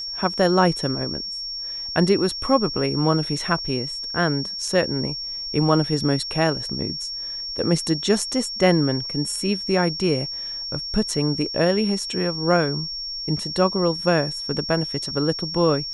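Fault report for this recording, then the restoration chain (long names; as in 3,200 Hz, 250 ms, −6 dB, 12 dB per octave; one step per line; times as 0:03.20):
whistle 5,500 Hz −28 dBFS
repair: notch filter 5,500 Hz, Q 30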